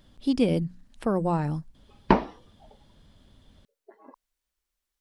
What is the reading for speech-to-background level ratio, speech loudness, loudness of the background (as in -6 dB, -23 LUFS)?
-2.5 dB, -27.5 LUFS, -25.0 LUFS